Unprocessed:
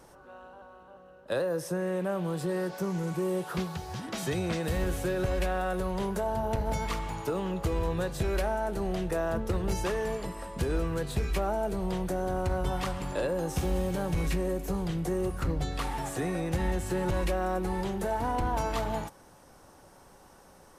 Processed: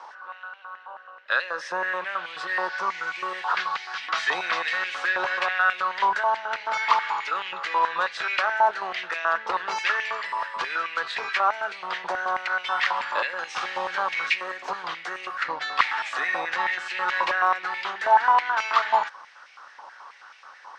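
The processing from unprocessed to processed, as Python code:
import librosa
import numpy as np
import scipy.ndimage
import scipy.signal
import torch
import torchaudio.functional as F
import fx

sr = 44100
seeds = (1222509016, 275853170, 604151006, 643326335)

y = scipy.signal.sosfilt(scipy.signal.butter(4, 4900.0, 'lowpass', fs=sr, output='sos'), x)
y = fx.filter_held_highpass(y, sr, hz=9.3, low_hz=970.0, high_hz=2300.0)
y = F.gain(torch.from_numpy(y), 9.0).numpy()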